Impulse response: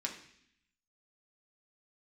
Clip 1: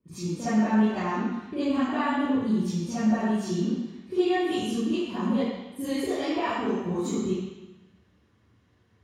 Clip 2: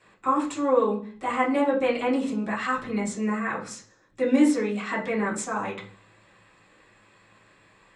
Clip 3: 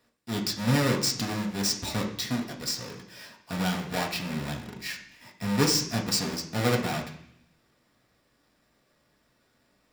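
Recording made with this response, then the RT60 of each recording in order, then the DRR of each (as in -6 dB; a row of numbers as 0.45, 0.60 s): 3; 1.0 s, not exponential, 0.65 s; -16.5, -7.0, 0.0 dB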